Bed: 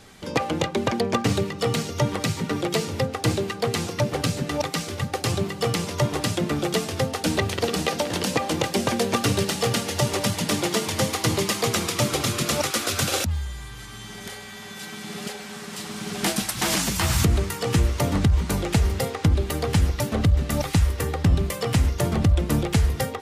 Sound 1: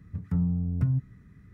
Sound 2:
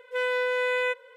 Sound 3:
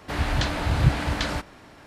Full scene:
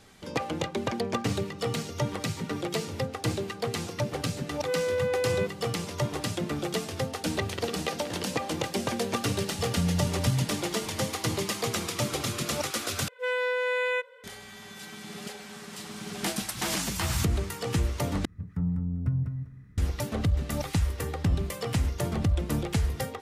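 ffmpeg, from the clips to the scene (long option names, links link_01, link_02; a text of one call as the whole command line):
ffmpeg -i bed.wav -i cue0.wav -i cue1.wav -filter_complex "[2:a]asplit=2[link_01][link_02];[1:a]asplit=2[link_03][link_04];[0:a]volume=-6.5dB[link_05];[link_01]equalizer=frequency=510:width_type=o:width=0.28:gain=11[link_06];[link_04]aecho=1:1:198|396|594:0.473|0.0946|0.0189[link_07];[link_05]asplit=3[link_08][link_09][link_10];[link_08]atrim=end=13.084[link_11];[link_02]atrim=end=1.16,asetpts=PTS-STARTPTS,volume=-1.5dB[link_12];[link_09]atrim=start=14.236:end=18.254[link_13];[link_07]atrim=end=1.53,asetpts=PTS-STARTPTS,volume=-2.5dB[link_14];[link_10]atrim=start=19.776[link_15];[link_06]atrim=end=1.16,asetpts=PTS-STARTPTS,volume=-10dB,afade=type=in:duration=0.004:curve=hsin,afade=type=out:start_time=1.156:duration=0.004:curve=hsin,adelay=199773S[link_16];[link_03]atrim=end=1.53,asetpts=PTS-STARTPTS,volume=-1.5dB,afade=type=in:duration=0.004:curve=hsin,afade=type=out:start_time=1.526:duration=0.004:curve=hsin,adelay=9450[link_17];[link_11][link_12]acrossfade=duration=0.004:curve1=hsin:curve2=hsin[link_18];[link_18][link_13]acrossfade=duration=0.004:curve1=hsin:curve2=hsin[link_19];[link_19][link_14]acrossfade=duration=0.004:curve1=hsin:curve2=hsin[link_20];[link_20][link_15]acrossfade=duration=0.004:curve1=hsin:curve2=hsin[link_21];[link_21][link_16][link_17]amix=inputs=3:normalize=0" out.wav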